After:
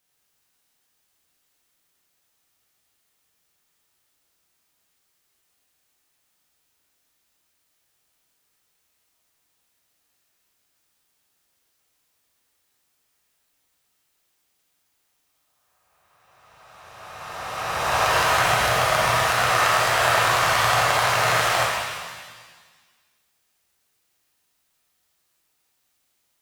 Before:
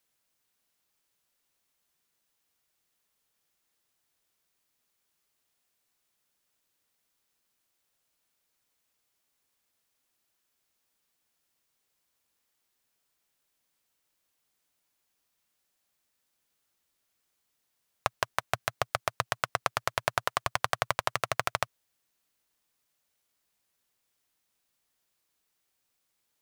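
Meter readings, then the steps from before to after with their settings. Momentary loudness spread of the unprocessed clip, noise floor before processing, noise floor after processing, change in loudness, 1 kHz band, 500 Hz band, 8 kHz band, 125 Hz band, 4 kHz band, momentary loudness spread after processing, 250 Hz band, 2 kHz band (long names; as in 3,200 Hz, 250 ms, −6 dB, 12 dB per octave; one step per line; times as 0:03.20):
4 LU, −79 dBFS, −71 dBFS, +12.0 dB, +12.5 dB, +12.0 dB, +13.5 dB, +12.5 dB, +13.5 dB, 14 LU, +13.0 dB, +13.5 dB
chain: peak hold with a rise ahead of every peak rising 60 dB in 2.67 s
reverb with rising layers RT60 1.5 s, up +7 semitones, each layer −8 dB, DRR −4.5 dB
level −2 dB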